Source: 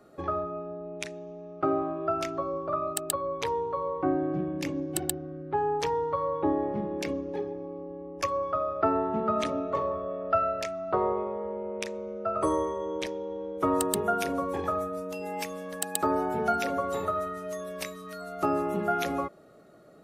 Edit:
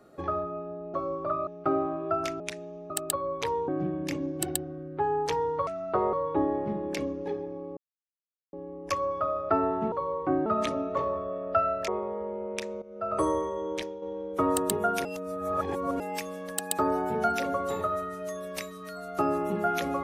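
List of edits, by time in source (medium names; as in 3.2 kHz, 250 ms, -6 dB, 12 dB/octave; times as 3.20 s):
0.94–1.44 s: swap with 2.37–2.90 s
3.68–4.22 s: move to 9.24 s
7.85 s: insert silence 0.76 s
10.66–11.12 s: move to 6.21 s
12.06–12.38 s: fade in, from -15 dB
13.00–13.26 s: fade out, to -6.5 dB
14.29–15.24 s: reverse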